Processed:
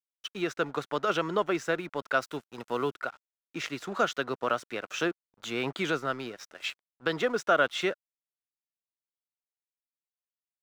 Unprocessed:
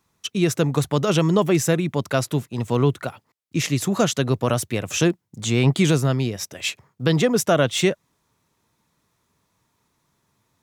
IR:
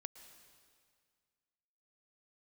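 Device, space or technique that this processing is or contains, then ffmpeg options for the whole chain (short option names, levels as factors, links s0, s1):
pocket radio on a weak battery: -filter_complex "[0:a]highpass=360,lowpass=4100,aeval=exprs='sgn(val(0))*max(abs(val(0))-0.00596,0)':c=same,equalizer=f=1400:t=o:w=0.44:g=10,asettb=1/sr,asplit=3[s0][s1][s2];[s0]atrim=end=2.224[s3];[s1]atrim=start=2.22:end=2.91,asetpts=PTS-STARTPTS,afade=t=in:d=0.004:c=qsin,afade=t=out:st=0.686:d=0.004:c=qsin,highshelf=f=7800:g=8.5[s4];[s2]atrim=start=2.906[s5];[s3][s4]acrossfade=d=0.004:c1=hsin:c2=qsin[s6];[s6][s5]acrossfade=d=0.004:c1=qsin:c2=hsin,volume=0.473"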